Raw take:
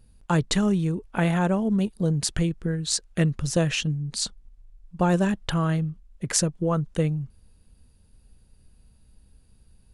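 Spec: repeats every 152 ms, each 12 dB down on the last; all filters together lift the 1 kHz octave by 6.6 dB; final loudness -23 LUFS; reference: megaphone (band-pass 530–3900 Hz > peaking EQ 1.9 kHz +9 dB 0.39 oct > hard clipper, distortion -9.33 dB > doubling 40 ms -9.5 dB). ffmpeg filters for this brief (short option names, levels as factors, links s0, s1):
-filter_complex "[0:a]highpass=530,lowpass=3900,equalizer=f=1000:t=o:g=8.5,equalizer=f=1900:t=o:w=0.39:g=9,aecho=1:1:152|304|456:0.251|0.0628|0.0157,asoftclip=type=hard:threshold=0.0944,asplit=2[s0][s1];[s1]adelay=40,volume=0.335[s2];[s0][s2]amix=inputs=2:normalize=0,volume=2"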